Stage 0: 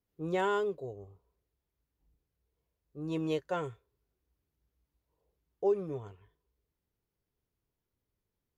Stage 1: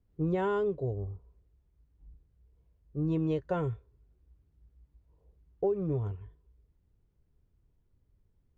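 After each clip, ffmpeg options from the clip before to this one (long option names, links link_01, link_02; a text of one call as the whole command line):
ffmpeg -i in.wav -af "aemphasis=mode=reproduction:type=riaa,acompressor=threshold=-29dB:ratio=6,volume=3dB" out.wav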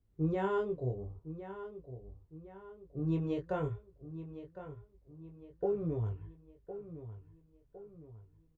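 ffmpeg -i in.wav -filter_complex "[0:a]flanger=delay=18:depth=6.3:speed=0.5,asplit=2[link_01][link_02];[link_02]adelay=1059,lowpass=frequency=3200:poles=1,volume=-12dB,asplit=2[link_03][link_04];[link_04]adelay=1059,lowpass=frequency=3200:poles=1,volume=0.45,asplit=2[link_05][link_06];[link_06]adelay=1059,lowpass=frequency=3200:poles=1,volume=0.45,asplit=2[link_07][link_08];[link_08]adelay=1059,lowpass=frequency=3200:poles=1,volume=0.45,asplit=2[link_09][link_10];[link_10]adelay=1059,lowpass=frequency=3200:poles=1,volume=0.45[link_11];[link_01][link_03][link_05][link_07][link_09][link_11]amix=inputs=6:normalize=0" out.wav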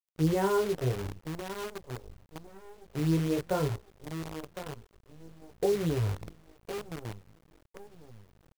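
ffmpeg -i in.wav -filter_complex "[0:a]asplit=2[link_01][link_02];[link_02]adynamicsmooth=sensitivity=7.5:basefreq=3100,volume=-1dB[link_03];[link_01][link_03]amix=inputs=2:normalize=0,acrusher=bits=7:dc=4:mix=0:aa=0.000001" out.wav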